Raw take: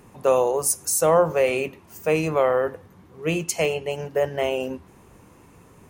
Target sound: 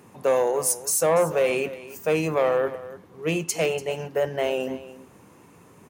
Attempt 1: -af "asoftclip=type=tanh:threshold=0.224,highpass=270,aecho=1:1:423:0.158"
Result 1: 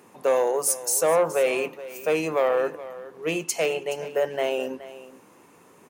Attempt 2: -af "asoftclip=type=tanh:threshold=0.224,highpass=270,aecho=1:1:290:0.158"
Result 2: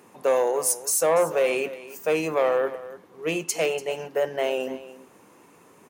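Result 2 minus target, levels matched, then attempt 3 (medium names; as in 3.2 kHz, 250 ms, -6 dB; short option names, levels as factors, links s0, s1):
125 Hz band -8.0 dB
-af "asoftclip=type=tanh:threshold=0.224,highpass=120,aecho=1:1:290:0.158"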